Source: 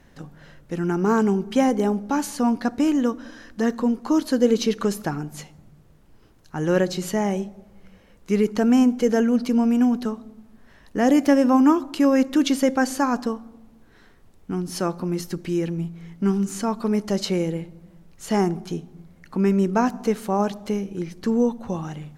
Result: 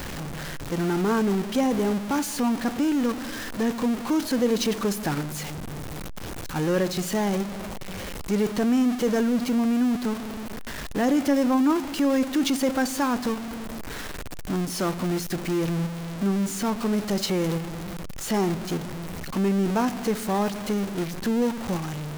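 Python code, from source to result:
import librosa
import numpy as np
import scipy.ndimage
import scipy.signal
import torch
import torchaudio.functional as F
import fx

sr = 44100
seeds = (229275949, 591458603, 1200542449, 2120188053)

p1 = x + 0.5 * 10.0 ** (-20.5 / 20.0) * np.sign(x)
p2 = fx.level_steps(p1, sr, step_db=22)
p3 = p1 + (p2 * 10.0 ** (-3.0 / 20.0))
y = p3 * 10.0 ** (-8.5 / 20.0)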